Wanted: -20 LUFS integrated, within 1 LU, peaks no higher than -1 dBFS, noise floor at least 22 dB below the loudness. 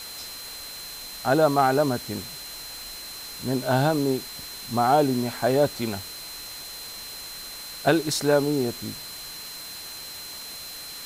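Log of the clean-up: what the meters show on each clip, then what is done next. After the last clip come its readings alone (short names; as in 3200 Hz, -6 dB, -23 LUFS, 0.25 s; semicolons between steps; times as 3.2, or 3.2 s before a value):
steady tone 4100 Hz; tone level -39 dBFS; noise floor -39 dBFS; noise floor target -49 dBFS; loudness -26.5 LUFS; peak -8.0 dBFS; loudness target -20.0 LUFS
-> notch 4100 Hz, Q 30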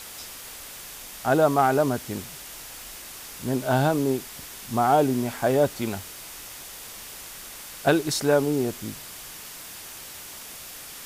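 steady tone none; noise floor -41 dBFS; noise floor target -46 dBFS
-> denoiser 6 dB, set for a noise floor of -41 dBFS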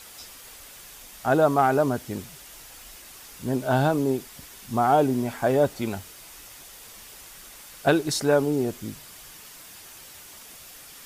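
noise floor -46 dBFS; loudness -24.0 LUFS; peak -8.0 dBFS; loudness target -20.0 LUFS
-> gain +4 dB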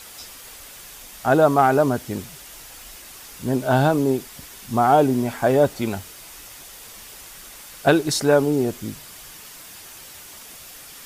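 loudness -20.0 LUFS; peak -4.0 dBFS; noise floor -42 dBFS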